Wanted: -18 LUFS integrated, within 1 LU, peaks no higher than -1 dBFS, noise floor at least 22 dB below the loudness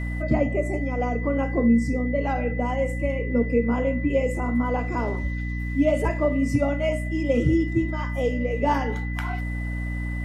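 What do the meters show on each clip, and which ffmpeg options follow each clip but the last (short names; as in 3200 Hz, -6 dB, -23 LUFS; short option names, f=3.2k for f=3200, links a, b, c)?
hum 60 Hz; harmonics up to 300 Hz; hum level -26 dBFS; steady tone 2000 Hz; tone level -36 dBFS; loudness -24.5 LUFS; peak -8.5 dBFS; loudness target -18.0 LUFS
-> -af "bandreject=f=60:t=h:w=4,bandreject=f=120:t=h:w=4,bandreject=f=180:t=h:w=4,bandreject=f=240:t=h:w=4,bandreject=f=300:t=h:w=4"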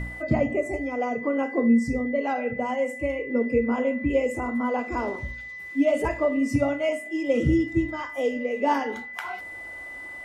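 hum none; steady tone 2000 Hz; tone level -36 dBFS
-> -af "bandreject=f=2k:w=30"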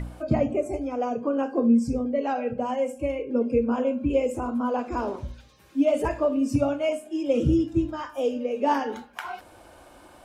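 steady tone none; loudness -25.5 LUFS; peak -11.0 dBFS; loudness target -18.0 LUFS
-> -af "volume=7.5dB"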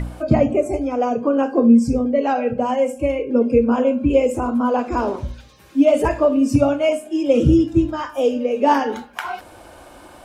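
loudness -18.0 LUFS; peak -3.5 dBFS; noise floor -44 dBFS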